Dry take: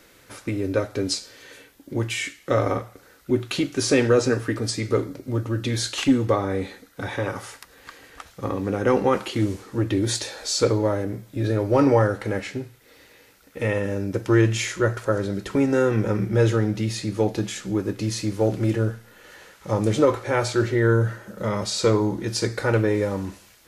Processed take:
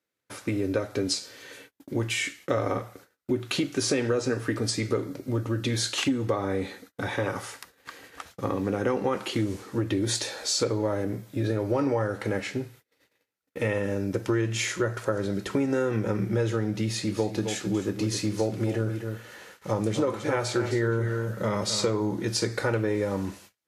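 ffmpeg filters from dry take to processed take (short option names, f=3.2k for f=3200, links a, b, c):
-filter_complex "[0:a]asettb=1/sr,asplit=3[a][b][c];[a]atrim=end=16.794[d];[b]atrim=start=16.79:end=21.91,asetpts=PTS-STARTPTS,afade=t=in:d=0.004:c=qsin,afade=t=out:st=5.116:d=0.004:c=qsin,aecho=1:1:262:0.316,atrim=end_sample=225792[e];[c]atrim=start=21.906[f];[d][e]acrossfade=d=0.004:c1=hsin:c2=qsin[g];[g][f]acrossfade=d=0.004:c1=qsin:c2=hsin,agate=range=-32dB:threshold=-48dB:ratio=16:detection=peak,highpass=89,acompressor=threshold=-22dB:ratio=6"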